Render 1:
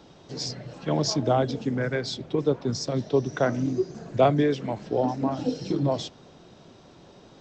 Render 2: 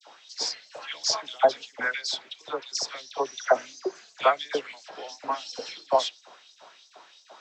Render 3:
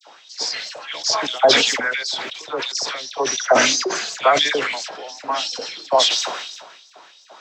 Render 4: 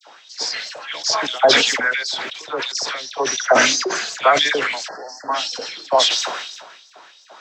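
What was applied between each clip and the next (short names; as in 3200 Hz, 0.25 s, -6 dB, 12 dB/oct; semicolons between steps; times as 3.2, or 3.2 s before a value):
LFO high-pass saw up 2.9 Hz 610–6200 Hz; expander -55 dBFS; dispersion lows, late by 72 ms, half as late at 1300 Hz; gain +3 dB
sustainer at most 42 dB/s; gain +4.5 dB
spectral delete 4.88–5.33, 2000–4200 Hz; bell 1600 Hz +3.5 dB 0.77 oct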